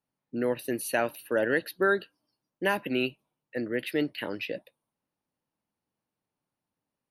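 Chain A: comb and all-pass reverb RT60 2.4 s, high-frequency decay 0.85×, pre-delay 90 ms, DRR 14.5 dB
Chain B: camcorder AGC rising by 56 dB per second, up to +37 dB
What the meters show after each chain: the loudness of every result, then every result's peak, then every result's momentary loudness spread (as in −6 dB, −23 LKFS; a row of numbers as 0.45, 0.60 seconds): −30.0, −27.5 LKFS; −12.5, −2.5 dBFS; 14, 8 LU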